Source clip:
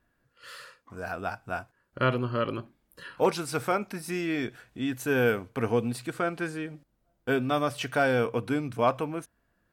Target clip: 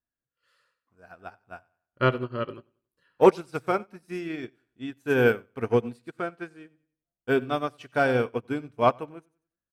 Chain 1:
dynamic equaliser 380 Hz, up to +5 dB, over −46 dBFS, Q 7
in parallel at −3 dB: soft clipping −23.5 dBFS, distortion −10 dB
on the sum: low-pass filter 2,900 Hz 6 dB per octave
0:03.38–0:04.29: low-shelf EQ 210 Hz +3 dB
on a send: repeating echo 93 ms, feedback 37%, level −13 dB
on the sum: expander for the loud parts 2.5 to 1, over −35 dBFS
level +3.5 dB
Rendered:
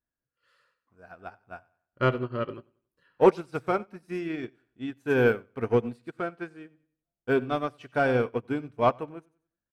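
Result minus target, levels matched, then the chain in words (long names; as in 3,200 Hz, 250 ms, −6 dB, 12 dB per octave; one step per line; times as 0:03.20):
soft clipping: distortion +13 dB; 8,000 Hz band −4.0 dB
dynamic equaliser 380 Hz, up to +5 dB, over −46 dBFS, Q 7
in parallel at −3 dB: soft clipping −13 dBFS, distortion −23 dB
on the sum: low-pass filter 7,200 Hz 6 dB per octave
0:03.38–0:04.29: low-shelf EQ 210 Hz +3 dB
on a send: repeating echo 93 ms, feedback 37%, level −13 dB
on the sum: expander for the loud parts 2.5 to 1, over −35 dBFS
level +3.5 dB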